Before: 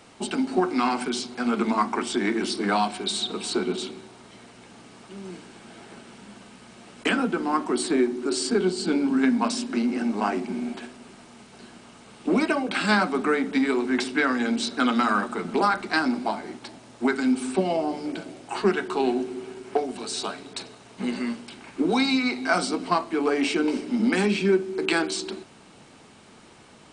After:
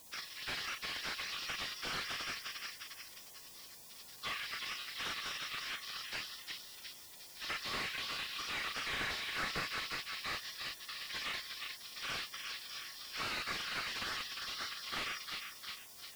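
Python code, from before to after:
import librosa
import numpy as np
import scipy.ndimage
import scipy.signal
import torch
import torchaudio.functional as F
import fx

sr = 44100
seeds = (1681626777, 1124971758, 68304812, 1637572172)

p1 = fx.rotary_switch(x, sr, hz=6.7, then_hz=0.65, switch_at_s=15.63)
p2 = fx.over_compress(p1, sr, threshold_db=-28.0, ratio=-1.0)
p3 = p1 + (p2 * librosa.db_to_amplitude(1.0))
p4 = fx.brickwall_bandpass(p3, sr, low_hz=1100.0, high_hz=5800.0)
p5 = fx.stretch_grains(p4, sr, factor=0.6, grain_ms=47.0)
p6 = fx.quant_dither(p5, sr, seeds[0], bits=10, dither='triangular')
p7 = fx.doubler(p6, sr, ms=37.0, db=-4.5)
p8 = p7 + fx.echo_feedback(p7, sr, ms=354, feedback_pct=48, wet_db=-8, dry=0)
p9 = fx.spec_gate(p8, sr, threshold_db=-15, keep='weak')
p10 = fx.slew_limit(p9, sr, full_power_hz=25.0)
y = p10 * librosa.db_to_amplitude(3.5)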